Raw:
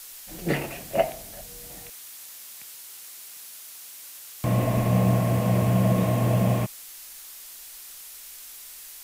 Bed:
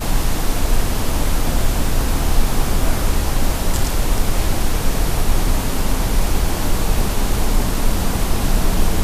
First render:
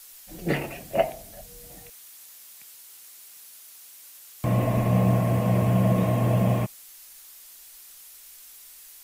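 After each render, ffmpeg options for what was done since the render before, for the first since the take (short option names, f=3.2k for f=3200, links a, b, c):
-af "afftdn=nr=6:nf=-43"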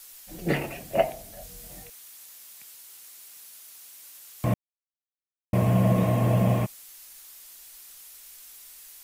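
-filter_complex "[0:a]asettb=1/sr,asplit=3[a][b][c];[a]atrim=end=1.394[d];[b]atrim=start=1.39:end=1.84,asetpts=PTS-STARTPTS,afade=t=in:d=0.004:c=qsin,afade=t=out:st=0.446:d=0.004:c=qsin,asplit=2[e][f];[f]adelay=22,volume=-4dB[g];[e][g]amix=inputs=2:normalize=0,atrim=end_sample=19845[h];[c]atrim=start=1.836[i];[d][h]acrossfade=d=0.004:c1=hsin:c2=qsin[j];[j][i]acrossfade=d=0.004:c1=qsin:c2=hsin,asplit=3[k][l][m];[k]atrim=end=4.54,asetpts=PTS-STARTPTS,afade=t=out:st=4.536:d=0.004:c=hsin[n];[l]atrim=start=4.54:end=5.53,asetpts=PTS-STARTPTS,volume=0[o];[m]atrim=start=5.53,asetpts=PTS-STARTPTS,afade=t=in:d=0.004:c=hsin[p];[n][o][p]concat=n=3:v=0:a=1"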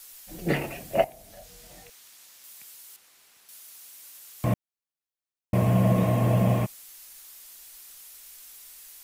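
-filter_complex "[0:a]asettb=1/sr,asplit=3[a][b][c];[a]atrim=end=1.044[d];[b]atrim=start=1.04:end=2.44,asetpts=PTS-STARTPTS,afade=t=in:d=0.004:c=qsin,afade=t=out:st=1.396:d=0.004:c=qsin,acrossover=split=390|7300[e][f][g];[e]acompressor=threshold=-53dB:ratio=4[h];[f]acompressor=threshold=-45dB:ratio=4[i];[g]acompressor=threshold=-54dB:ratio=4[j];[h][i][j]amix=inputs=3:normalize=0[k];[c]atrim=start=2.436[l];[d][k]acrossfade=d=0.004:c1=hsin:c2=qsin[m];[m][l]acrossfade=d=0.004:c1=qsin:c2=hsin,asettb=1/sr,asplit=3[n][o][p];[n]atrim=end=2.964[q];[o]atrim=start=2.96:end=3.49,asetpts=PTS-STARTPTS,afade=t=in:d=0.004:c=qsin,afade=t=out:st=0.526:d=0.004:c=qsin,lowpass=f=2.4k:p=1[r];[p]atrim=start=3.486[s];[q][r]acrossfade=d=0.004:c1=hsin:c2=qsin[t];[t][s]acrossfade=d=0.004:c1=qsin:c2=hsin"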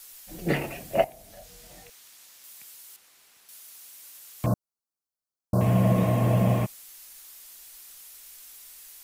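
-filter_complex "[0:a]asettb=1/sr,asplit=3[a][b][c];[a]atrim=end=4.464[d];[b]atrim=start=4.46:end=5.61,asetpts=PTS-STARTPTS,afade=t=in:d=0.004:c=qsin,afade=t=out:st=1.146:d=0.004:c=qsin,asuperstop=centerf=2500:order=12:qfactor=0.98[e];[c]atrim=start=5.606[f];[d][e]acrossfade=d=0.004:c1=hsin:c2=qsin[g];[g][f]acrossfade=d=0.004:c1=qsin:c2=hsin"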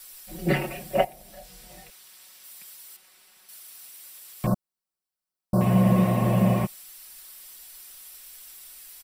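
-af "bandreject=f=6.6k:w=7.7,aecho=1:1:5.4:0.73"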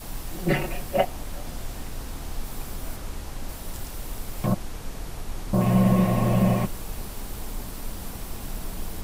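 -filter_complex "[1:a]volume=-17dB[a];[0:a][a]amix=inputs=2:normalize=0"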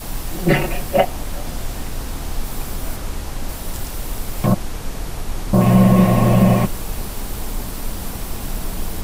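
-af "volume=8dB,alimiter=limit=-3dB:level=0:latency=1"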